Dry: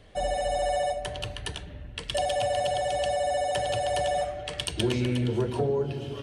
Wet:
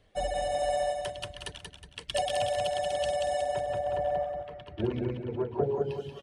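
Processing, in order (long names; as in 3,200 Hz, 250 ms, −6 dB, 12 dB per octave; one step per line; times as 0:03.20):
mains-hum notches 60/120/180/240/300/360 Hz
reverb reduction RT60 1.5 s
0:03.42–0:05.64: low-pass filter 1,300 Hz 12 dB per octave
repeating echo 183 ms, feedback 47%, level −3.5 dB
expander for the loud parts 1.5 to 1, over −44 dBFS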